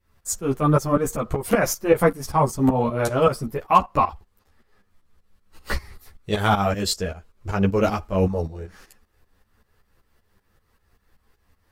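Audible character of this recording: tremolo saw up 5.2 Hz, depth 80%; a shimmering, thickened sound

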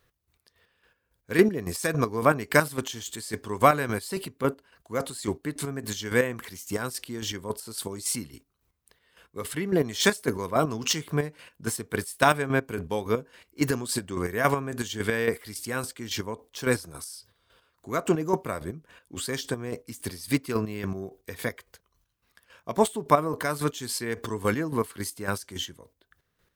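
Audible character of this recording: chopped level 3.6 Hz, depth 60%, duty 35%

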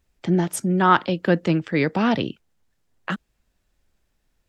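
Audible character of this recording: noise floor -72 dBFS; spectral tilt -5.5 dB/oct

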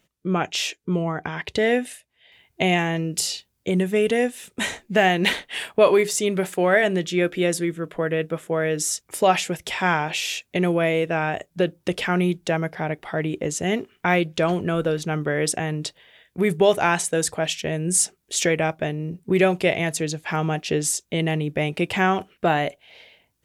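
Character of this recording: noise floor -71 dBFS; spectral tilt -4.0 dB/oct

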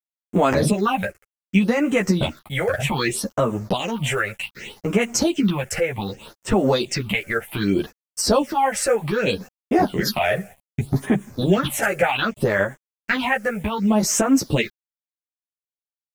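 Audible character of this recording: a quantiser's noise floor 8-bit, dither none; phasing stages 6, 0.65 Hz, lowest notch 250–4400 Hz; tremolo saw up 1.9 Hz, depth 35%; a shimmering, thickened sound

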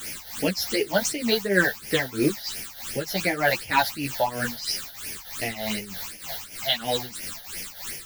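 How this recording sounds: a quantiser's noise floor 6-bit, dither triangular; phasing stages 8, 2.8 Hz, lowest notch 320–1200 Hz; tremolo triangle 3.2 Hz, depth 80%; a shimmering, thickened sound

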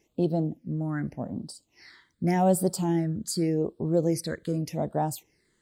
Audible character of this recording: phasing stages 8, 0.85 Hz, lowest notch 740–2100 Hz

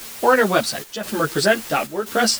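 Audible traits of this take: a quantiser's noise floor 6-bit, dither triangular; chopped level 0.97 Hz, depth 65%, duty 80%; a shimmering, thickened sound

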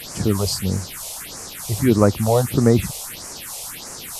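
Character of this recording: a quantiser's noise floor 6-bit, dither triangular; phasing stages 4, 1.6 Hz, lowest notch 250–3400 Hz; MP2

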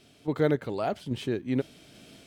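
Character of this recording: random-step tremolo 3.6 Hz, depth 55%

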